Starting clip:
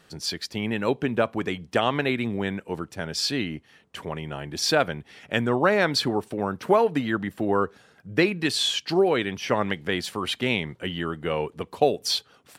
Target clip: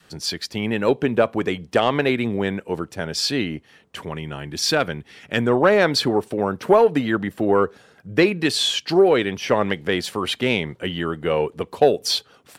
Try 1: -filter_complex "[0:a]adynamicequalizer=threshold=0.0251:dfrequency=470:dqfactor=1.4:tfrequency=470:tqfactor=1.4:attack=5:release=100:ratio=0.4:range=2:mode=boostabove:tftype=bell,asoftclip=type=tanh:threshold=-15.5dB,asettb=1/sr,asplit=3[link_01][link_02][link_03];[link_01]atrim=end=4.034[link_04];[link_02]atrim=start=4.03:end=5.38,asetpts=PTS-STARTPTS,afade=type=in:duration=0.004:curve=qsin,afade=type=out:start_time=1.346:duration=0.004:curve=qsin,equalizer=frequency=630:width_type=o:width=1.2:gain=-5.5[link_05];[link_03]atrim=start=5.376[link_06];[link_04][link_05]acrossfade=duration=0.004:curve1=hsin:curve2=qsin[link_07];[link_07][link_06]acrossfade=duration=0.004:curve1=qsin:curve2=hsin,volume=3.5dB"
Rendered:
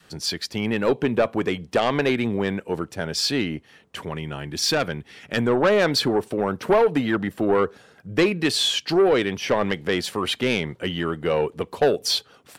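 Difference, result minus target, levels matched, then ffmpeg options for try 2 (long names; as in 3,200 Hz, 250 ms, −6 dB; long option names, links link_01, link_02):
soft clipping: distortion +12 dB
-filter_complex "[0:a]adynamicequalizer=threshold=0.0251:dfrequency=470:dqfactor=1.4:tfrequency=470:tqfactor=1.4:attack=5:release=100:ratio=0.4:range=2:mode=boostabove:tftype=bell,asoftclip=type=tanh:threshold=-6.5dB,asettb=1/sr,asplit=3[link_01][link_02][link_03];[link_01]atrim=end=4.034[link_04];[link_02]atrim=start=4.03:end=5.38,asetpts=PTS-STARTPTS,afade=type=in:duration=0.004:curve=qsin,afade=type=out:start_time=1.346:duration=0.004:curve=qsin,equalizer=frequency=630:width_type=o:width=1.2:gain=-5.5[link_05];[link_03]atrim=start=5.376[link_06];[link_04][link_05]acrossfade=duration=0.004:curve1=hsin:curve2=qsin[link_07];[link_07][link_06]acrossfade=duration=0.004:curve1=qsin:curve2=hsin,volume=3.5dB"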